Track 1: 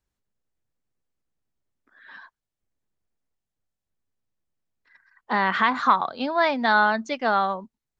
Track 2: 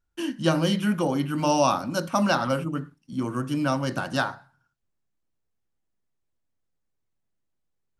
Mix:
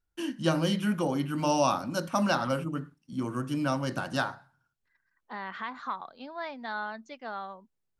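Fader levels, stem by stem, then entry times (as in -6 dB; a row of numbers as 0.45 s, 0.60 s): -16.0 dB, -4.0 dB; 0.00 s, 0.00 s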